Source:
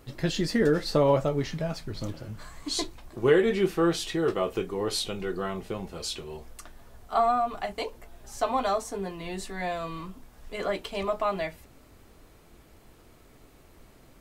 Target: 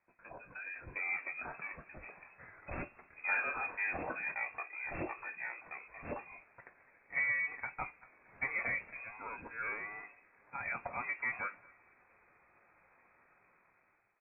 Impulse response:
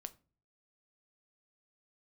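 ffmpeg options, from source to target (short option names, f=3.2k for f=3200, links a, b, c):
-filter_complex "[0:a]highpass=f=190:w=0.5412,highpass=f=190:w=1.3066,aderivative,dynaudnorm=f=400:g=5:m=15dB,asoftclip=type=hard:threshold=-16.5dB,asetrate=27781,aresample=44100,atempo=1.5874,asoftclip=type=tanh:threshold=-18.5dB,asplit=2[a][b];[b]adelay=228,lowpass=f=1.6k:p=1,volume=-23dB,asplit=2[c][d];[d]adelay=228,lowpass=f=1.6k:p=1,volume=0.39,asplit=2[e][f];[f]adelay=228,lowpass=f=1.6k:p=1,volume=0.39[g];[a][c][e][g]amix=inputs=4:normalize=0,asplit=2[h][i];[1:a]atrim=start_sample=2205,lowshelf=f=220:g=8.5[j];[i][j]afir=irnorm=-1:irlink=0,volume=-2.5dB[k];[h][k]amix=inputs=2:normalize=0,lowpass=f=2.3k:t=q:w=0.5098,lowpass=f=2.3k:t=q:w=0.6013,lowpass=f=2.3k:t=q:w=0.9,lowpass=f=2.3k:t=q:w=2.563,afreqshift=-2700,volume=-8.5dB" -ar 11025 -c:a libmp3lame -b:a 16k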